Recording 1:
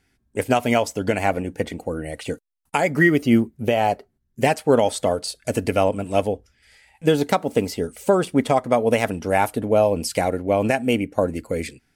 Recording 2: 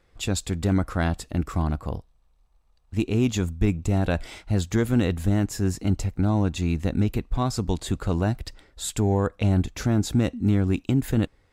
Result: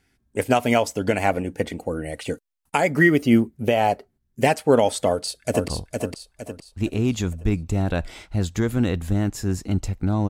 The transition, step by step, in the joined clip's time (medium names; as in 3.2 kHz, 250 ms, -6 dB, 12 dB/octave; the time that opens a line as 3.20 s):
recording 1
5.08–5.68 s: echo throw 460 ms, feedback 40%, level -4 dB
5.68 s: go over to recording 2 from 1.84 s